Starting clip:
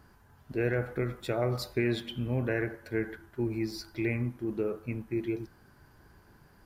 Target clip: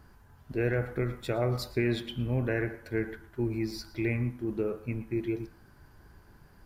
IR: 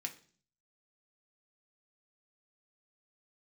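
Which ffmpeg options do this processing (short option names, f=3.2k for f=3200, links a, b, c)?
-filter_complex "[0:a]lowshelf=f=63:g=9,asplit=2[a][b];[1:a]atrim=start_sample=2205,adelay=114[c];[b][c]afir=irnorm=-1:irlink=0,volume=-17.5dB[d];[a][d]amix=inputs=2:normalize=0"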